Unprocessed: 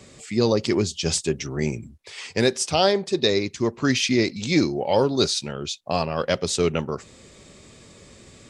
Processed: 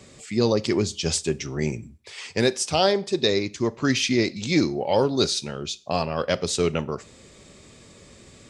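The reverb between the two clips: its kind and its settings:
four-comb reverb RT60 0.39 s, combs from 26 ms, DRR 19 dB
level −1 dB

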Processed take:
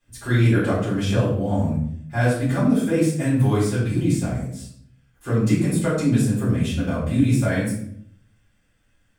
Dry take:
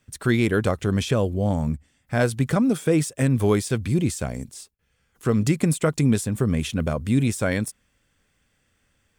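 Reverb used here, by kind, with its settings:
rectangular room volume 110 cubic metres, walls mixed, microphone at 3.9 metres
level −13.5 dB

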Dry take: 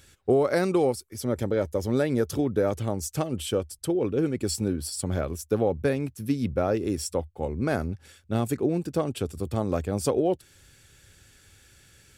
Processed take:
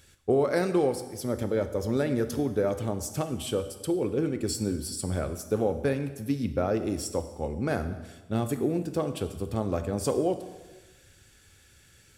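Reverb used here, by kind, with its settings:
dense smooth reverb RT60 1.2 s, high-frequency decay 0.9×, DRR 8.5 dB
level −2.5 dB

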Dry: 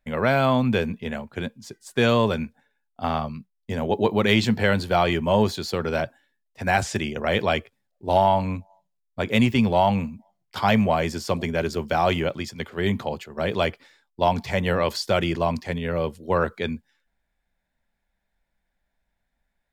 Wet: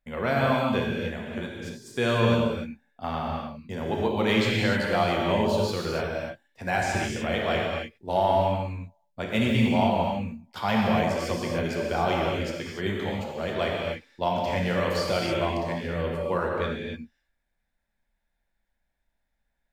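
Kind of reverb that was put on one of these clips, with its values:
reverb whose tail is shaped and stops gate 320 ms flat, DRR −2.5 dB
level −7 dB

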